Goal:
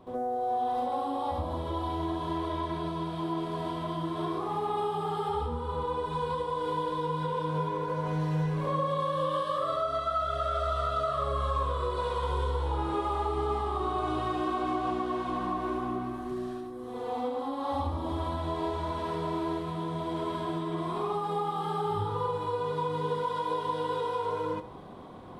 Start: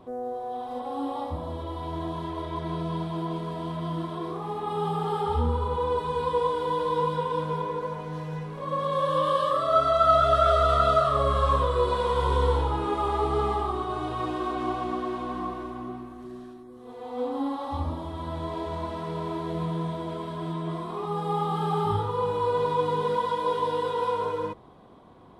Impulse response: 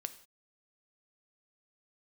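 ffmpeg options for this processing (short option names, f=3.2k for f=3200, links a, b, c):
-filter_complex "[0:a]acompressor=threshold=-34dB:ratio=6,asplit=2[a][b];[1:a]atrim=start_sample=2205,adelay=70[c];[b][c]afir=irnorm=-1:irlink=0,volume=10.5dB[d];[a][d]amix=inputs=2:normalize=0,volume=-3dB"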